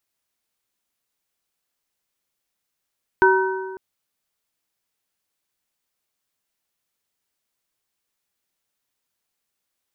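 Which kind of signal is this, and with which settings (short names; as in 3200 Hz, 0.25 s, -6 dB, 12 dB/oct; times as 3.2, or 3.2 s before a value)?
metal hit plate, length 0.55 s, lowest mode 380 Hz, modes 3, decay 1.64 s, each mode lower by 0.5 dB, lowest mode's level -13.5 dB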